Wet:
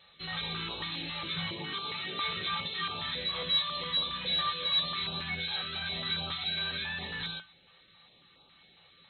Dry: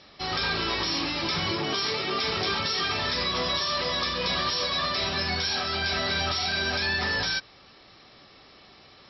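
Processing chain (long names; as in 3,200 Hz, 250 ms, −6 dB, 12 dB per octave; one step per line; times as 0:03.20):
linear-phase brick-wall low-pass 4,200 Hz
high-shelf EQ 2,800 Hz +9.5 dB
tuned comb filter 170 Hz, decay 0.19 s, harmonics odd, mix 80%
notch on a step sequencer 7.3 Hz 270–1,900 Hz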